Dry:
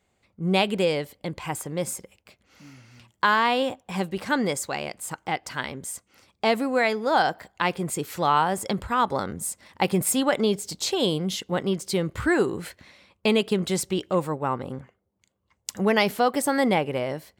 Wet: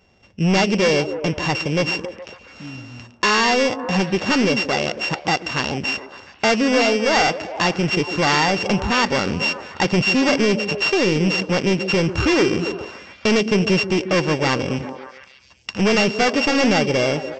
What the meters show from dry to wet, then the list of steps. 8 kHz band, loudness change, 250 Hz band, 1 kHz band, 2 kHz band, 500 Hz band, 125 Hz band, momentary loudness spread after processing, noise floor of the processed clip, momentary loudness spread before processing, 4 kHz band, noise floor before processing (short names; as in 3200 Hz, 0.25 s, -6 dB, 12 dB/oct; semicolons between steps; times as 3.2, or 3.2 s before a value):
+1.0 dB, +6.5 dB, +7.0 dB, +2.5 dB, +8.5 dB, +5.5 dB, +8.0 dB, 11 LU, -48 dBFS, 11 LU, +8.5 dB, -73 dBFS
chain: sample sorter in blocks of 16 samples; dynamic EQ 4600 Hz, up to +7 dB, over -50 dBFS, Q 7; in parallel at +1.5 dB: compressor, threshold -32 dBFS, peak gain reduction 15.5 dB; on the sum: hard clip -20 dBFS, distortion -8 dB; on a send: delay with a stepping band-pass 0.14 s, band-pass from 280 Hz, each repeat 0.7 oct, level -6.5 dB; on the sum: downsampling 16000 Hz; gain +6.5 dB